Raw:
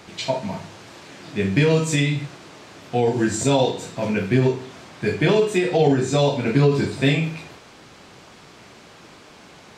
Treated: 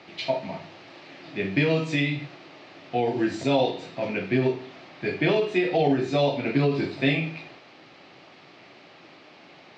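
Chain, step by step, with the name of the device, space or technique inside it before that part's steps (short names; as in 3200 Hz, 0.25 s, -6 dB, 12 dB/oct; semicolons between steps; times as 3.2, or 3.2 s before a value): kitchen radio (speaker cabinet 200–4200 Hz, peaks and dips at 210 Hz -8 dB, 450 Hz -7 dB, 1000 Hz -7 dB, 1500 Hz -7 dB, 3400 Hz -4 dB)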